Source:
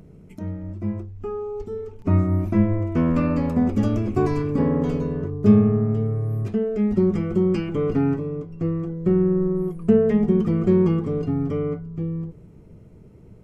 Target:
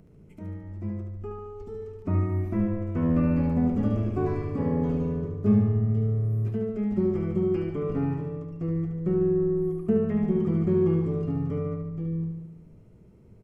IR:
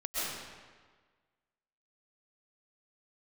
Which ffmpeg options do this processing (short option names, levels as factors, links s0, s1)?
-filter_complex "[0:a]acrossover=split=2500[s0][s1];[s1]acompressor=threshold=0.00126:ratio=4:attack=1:release=60[s2];[s0][s2]amix=inputs=2:normalize=0,aecho=1:1:73|146|219|292|365|438|511|584:0.562|0.326|0.189|0.11|0.0636|0.0369|0.0214|0.0124,volume=0.422"